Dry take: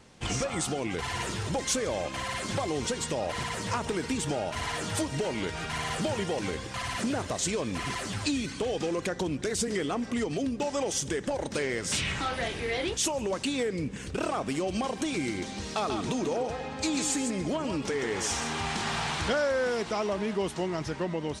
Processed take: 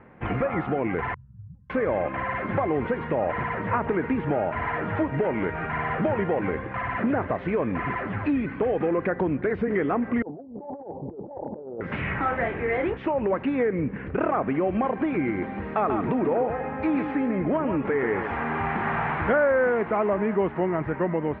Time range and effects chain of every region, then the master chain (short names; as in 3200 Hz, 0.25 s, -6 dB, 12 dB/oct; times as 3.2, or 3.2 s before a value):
1.14–1.7 inverse Chebyshev band-stop 330–4100 Hz, stop band 50 dB + low shelf 300 Hz -12 dB
10.22–11.81 steep low-pass 910 Hz 72 dB/oct + negative-ratio compressor -36 dBFS, ratio -0.5 + tilt +3 dB/oct
whole clip: steep low-pass 2100 Hz 36 dB/oct; low shelf 67 Hz -9 dB; gain +6.5 dB